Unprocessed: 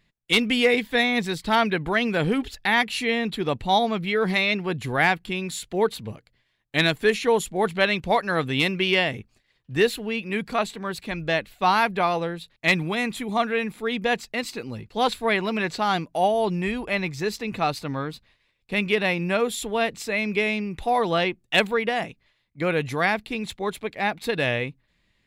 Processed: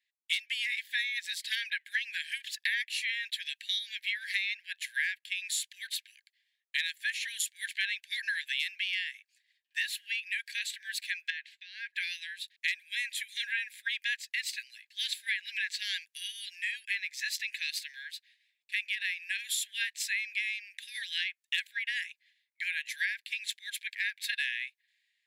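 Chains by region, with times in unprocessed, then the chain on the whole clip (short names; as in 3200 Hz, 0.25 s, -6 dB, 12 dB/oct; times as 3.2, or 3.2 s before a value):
11.3–11.94 gate -53 dBFS, range -20 dB + LPF 4800 Hz + compressor 16:1, threshold -29 dBFS
whole clip: Chebyshev high-pass 1600 Hz, order 10; compressor 10:1, threshold -33 dBFS; three-band expander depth 40%; gain +3.5 dB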